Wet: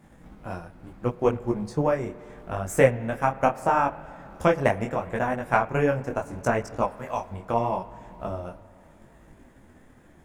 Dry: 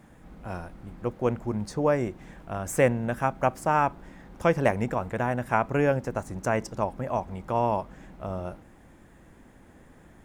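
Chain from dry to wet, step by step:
0:06.85–0:07.31: tilt shelving filter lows −6 dB, about 1,200 Hz
transient designer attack +6 dB, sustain −3 dB
spring reverb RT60 3.2 s, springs 52 ms, chirp 45 ms, DRR 17 dB
micro pitch shift up and down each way 26 cents
level +2.5 dB

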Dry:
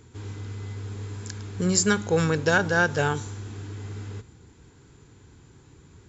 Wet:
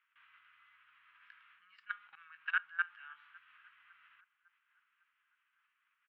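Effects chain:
double-tracking delay 18 ms −11 dB
output level in coarse steps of 19 dB
elliptic band-pass filter 1,200–2,900 Hz, stop band 50 dB
feedback echo with a low-pass in the loop 554 ms, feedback 58%, low-pass 2,100 Hz, level −23 dB
level −7 dB

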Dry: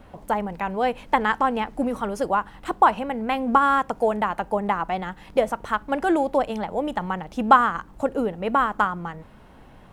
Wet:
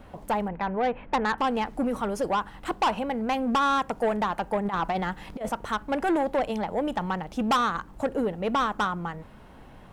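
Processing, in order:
0:00.48–0:01.38: low-pass filter 2,400 Hz 24 dB per octave
0:04.65–0:05.49: compressor whose output falls as the input rises −25 dBFS, ratio −0.5
soft clipping −19 dBFS, distortion −8 dB

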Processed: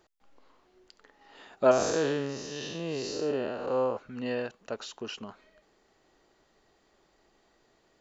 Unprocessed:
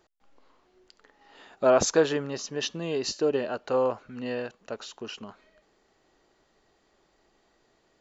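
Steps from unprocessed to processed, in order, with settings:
0:01.71–0:03.97: spectrum smeared in time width 200 ms

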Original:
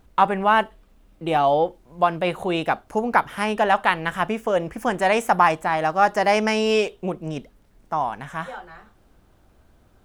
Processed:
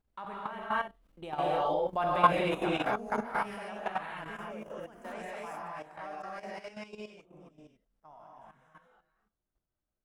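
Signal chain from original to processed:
source passing by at 0:02.09, 11 m/s, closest 3.7 metres
reverb whose tail is shaped and stops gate 300 ms rising, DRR −6.5 dB
output level in coarse steps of 12 dB
level −5 dB

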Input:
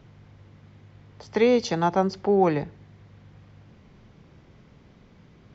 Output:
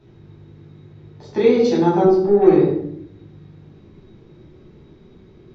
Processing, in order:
0:02.06–0:02.47: tube saturation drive 16 dB, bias 0.8
hollow resonant body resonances 360/3,800 Hz, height 17 dB, ringing for 40 ms
convolution reverb RT60 0.70 s, pre-delay 9 ms, DRR −5.5 dB
level −9.5 dB

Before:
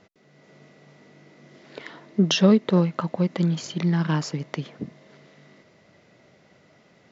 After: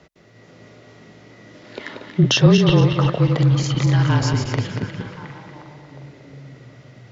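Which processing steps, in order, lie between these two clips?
feedback delay that plays each chunk backwards 117 ms, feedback 59%, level −5.5 dB
in parallel at −0.5 dB: brickwall limiter −15.5 dBFS, peak gain reduction 11 dB
on the sum: frequency shifter −33 Hz
echo through a band-pass that steps 358 ms, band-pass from 2,900 Hz, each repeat −0.7 octaves, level −7 dB

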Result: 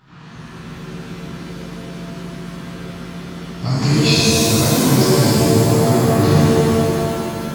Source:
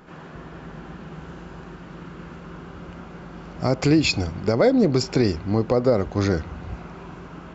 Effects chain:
octave-band graphic EQ 125/500/1,000/4,000 Hz +8/−10/+4/+10 dB
reverb with rising layers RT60 2.8 s, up +7 semitones, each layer −2 dB, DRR −9 dB
level −8.5 dB

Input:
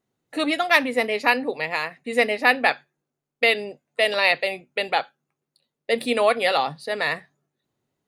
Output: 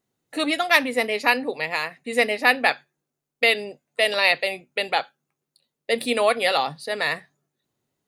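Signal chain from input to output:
high-shelf EQ 4,100 Hz +6 dB
level −1 dB

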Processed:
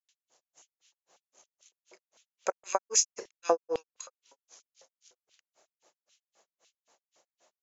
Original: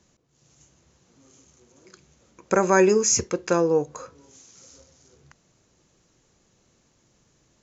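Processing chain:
auto-filter high-pass square 4.6 Hz 650–3,000 Hz
granular cloud 156 ms, grains 3.8 per second, pitch spread up and down by 0 semitones

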